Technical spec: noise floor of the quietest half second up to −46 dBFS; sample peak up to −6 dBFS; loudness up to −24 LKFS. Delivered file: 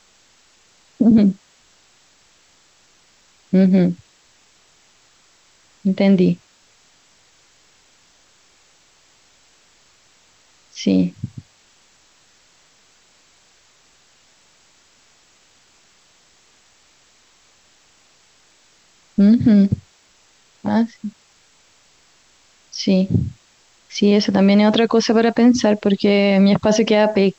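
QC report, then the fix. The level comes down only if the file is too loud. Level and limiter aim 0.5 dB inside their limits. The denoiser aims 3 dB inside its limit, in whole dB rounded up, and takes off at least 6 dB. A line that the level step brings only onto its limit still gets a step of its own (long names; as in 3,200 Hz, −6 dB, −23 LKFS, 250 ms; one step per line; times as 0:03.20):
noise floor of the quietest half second −55 dBFS: in spec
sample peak −5.5 dBFS: out of spec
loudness −16.5 LKFS: out of spec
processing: level −8 dB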